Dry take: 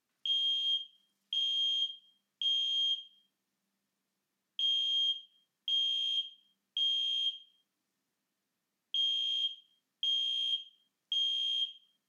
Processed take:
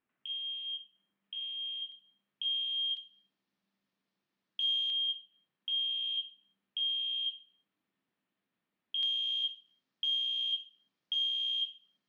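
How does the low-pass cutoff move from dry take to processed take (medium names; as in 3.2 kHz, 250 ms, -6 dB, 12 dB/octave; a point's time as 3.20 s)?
low-pass 24 dB/octave
2.7 kHz
from 1.92 s 3.4 kHz
from 2.97 s 4.7 kHz
from 4.90 s 3.5 kHz
from 9.03 s 5 kHz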